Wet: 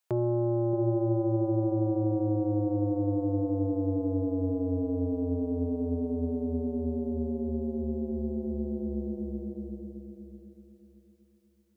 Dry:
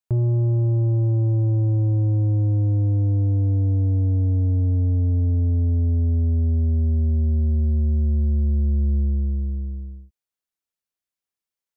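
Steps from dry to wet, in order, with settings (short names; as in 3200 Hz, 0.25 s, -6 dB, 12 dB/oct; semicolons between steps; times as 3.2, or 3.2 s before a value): HPF 390 Hz 12 dB/oct; on a send: dark delay 0.625 s, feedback 31%, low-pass 520 Hz, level -6 dB; on the sum: gain +7.5 dB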